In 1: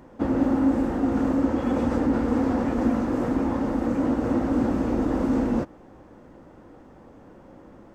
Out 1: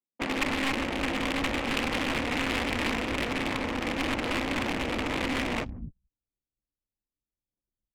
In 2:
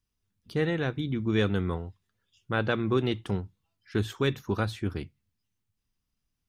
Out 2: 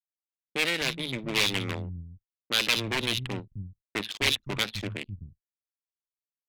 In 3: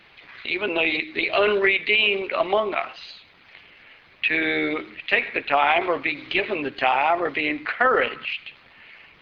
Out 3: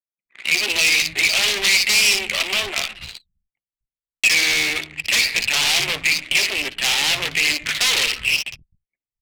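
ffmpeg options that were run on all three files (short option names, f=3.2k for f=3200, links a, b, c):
-filter_complex "[0:a]agate=range=-24dB:threshold=-43dB:ratio=16:detection=peak,aeval=exprs='max(val(0),0)':c=same,highpass=f=43:p=1,acrossover=split=170|3600[a][b][c];[c]adelay=60[d];[a]adelay=260[e];[e][b][d]amix=inputs=3:normalize=0,aeval=exprs='0.0531*(abs(mod(val(0)/0.0531+3,4)-2)-1)':c=same,anlmdn=0.01,aexciter=amount=6.1:drive=3.3:freq=2.2k,equalizer=f=2.1k:w=0.75:g=6.5,adynamicsmooth=sensitivity=3:basefreq=1.6k"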